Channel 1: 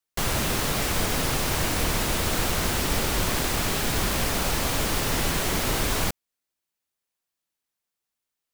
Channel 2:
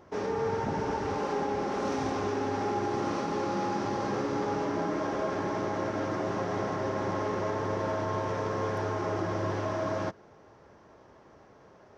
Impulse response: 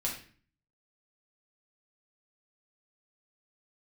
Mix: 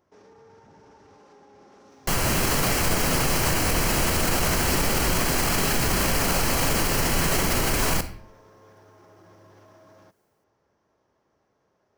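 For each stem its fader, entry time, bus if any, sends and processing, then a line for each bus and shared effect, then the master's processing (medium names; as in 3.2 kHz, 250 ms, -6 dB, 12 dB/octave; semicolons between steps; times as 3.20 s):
+1.0 dB, 1.90 s, send -14 dB, band-stop 3.6 kHz, Q 5.1; level rider gain up to 6 dB
-15.5 dB, 0.00 s, no send, treble shelf 5.8 kHz +11 dB; peak limiter -29.5 dBFS, peak gain reduction 9.5 dB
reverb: on, RT60 0.45 s, pre-delay 5 ms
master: peak limiter -13 dBFS, peak gain reduction 9.5 dB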